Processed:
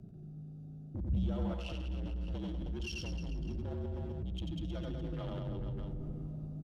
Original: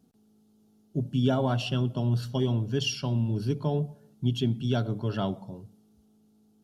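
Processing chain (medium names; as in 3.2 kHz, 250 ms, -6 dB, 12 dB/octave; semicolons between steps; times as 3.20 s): local Wiener filter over 41 samples; compression 6:1, threshold -41 dBFS, peak gain reduction 19.5 dB; reverse bouncing-ball echo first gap 90 ms, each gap 1.15×, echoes 5; saturation -33 dBFS, distortion -20 dB; 4.46–5.26 s: comb 5.4 ms, depth 58%; frequency shift -61 Hz; on a send at -19 dB: reverberation RT60 3.4 s, pre-delay 3 ms; on the sum: gain riding 0.5 s; peak limiter -47 dBFS, peak gain reduction 15 dB; 1.09–1.54 s: bass shelf 280 Hz +8 dB; trim +14.5 dB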